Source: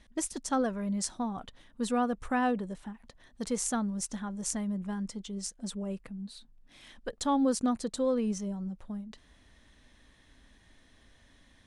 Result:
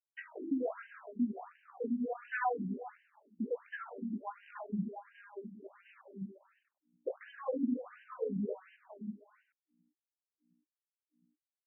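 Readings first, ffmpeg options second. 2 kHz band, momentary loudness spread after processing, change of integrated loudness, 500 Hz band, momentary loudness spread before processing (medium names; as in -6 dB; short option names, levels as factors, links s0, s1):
-2.0 dB, 16 LU, -6.5 dB, -5.5 dB, 14 LU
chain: -af "flanger=delay=17.5:depth=3.6:speed=2.1,lowpass=f=4700:w=0.5412,lowpass=f=4700:w=1.3066,aemphasis=mode=production:type=cd,anlmdn=0.1,acompressor=threshold=0.0224:ratio=4,bandreject=f=52.5:t=h:w=4,bandreject=f=105:t=h:w=4,bandreject=f=157.5:t=h:w=4,bandreject=f=210:t=h:w=4,bandreject=f=262.5:t=h:w=4,bandreject=f=315:t=h:w=4,bandreject=f=367.5:t=h:w=4,bandreject=f=420:t=h:w=4,bandreject=f=472.5:t=h:w=4,bandreject=f=525:t=h:w=4,bandreject=f=577.5:t=h:w=4,bandreject=f=630:t=h:w=4,bandreject=f=682.5:t=h:w=4,bandreject=f=735:t=h:w=4,bandreject=f=787.5:t=h:w=4,bandreject=f=840:t=h:w=4,bandreject=f=892.5:t=h:w=4,bandreject=f=945:t=h:w=4,bandreject=f=997.5:t=h:w=4,bandreject=f=1050:t=h:w=4,bandreject=f=1102.5:t=h:w=4,bandreject=f=1155:t=h:w=4,bandreject=f=1207.5:t=h:w=4,bandreject=f=1260:t=h:w=4,bandreject=f=1312.5:t=h:w=4,bandreject=f=1365:t=h:w=4,aeval=exprs='val(0)*gte(abs(val(0)),0.00266)':c=same,aeval=exprs='val(0)+0.000398*(sin(2*PI*60*n/s)+sin(2*PI*2*60*n/s)/2+sin(2*PI*3*60*n/s)/3+sin(2*PI*4*60*n/s)/4+sin(2*PI*5*60*n/s)/5)':c=same,aecho=1:1:48|135|262|301|393:0.237|0.106|0.188|0.266|0.141,afftfilt=real='re*between(b*sr/1024,240*pow(2200/240,0.5+0.5*sin(2*PI*1.4*pts/sr))/1.41,240*pow(2200/240,0.5+0.5*sin(2*PI*1.4*pts/sr))*1.41)':imag='im*between(b*sr/1024,240*pow(2200/240,0.5+0.5*sin(2*PI*1.4*pts/sr))/1.41,240*pow(2200/240,0.5+0.5*sin(2*PI*1.4*pts/sr))*1.41)':win_size=1024:overlap=0.75,volume=2.37"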